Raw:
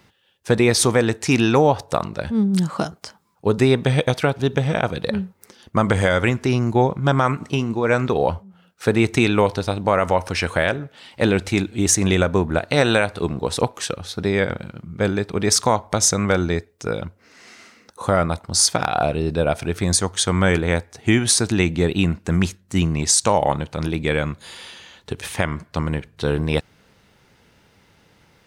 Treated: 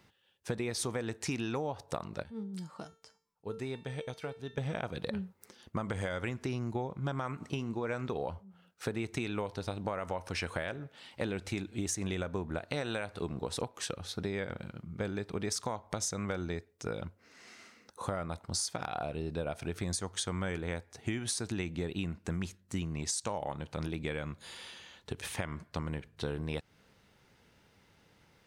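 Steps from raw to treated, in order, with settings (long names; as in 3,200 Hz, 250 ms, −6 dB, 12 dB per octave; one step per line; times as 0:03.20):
0:02.23–0:04.58: tuned comb filter 450 Hz, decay 0.4 s, mix 80%
downward compressor, threshold −23 dBFS, peak gain reduction 11.5 dB
level −9 dB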